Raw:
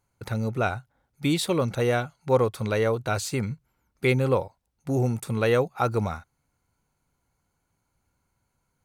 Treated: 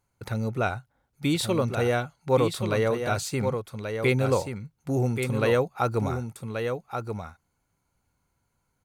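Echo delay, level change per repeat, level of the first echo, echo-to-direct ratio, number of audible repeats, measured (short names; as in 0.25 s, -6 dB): 1.131 s, no steady repeat, -6.5 dB, -6.5 dB, 1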